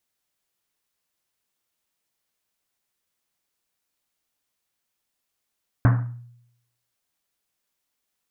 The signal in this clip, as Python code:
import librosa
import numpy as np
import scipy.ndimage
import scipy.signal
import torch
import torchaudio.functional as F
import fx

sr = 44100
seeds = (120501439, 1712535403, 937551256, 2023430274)

y = fx.risset_drum(sr, seeds[0], length_s=1.1, hz=120.0, decay_s=0.8, noise_hz=1100.0, noise_width_hz=1200.0, noise_pct=15)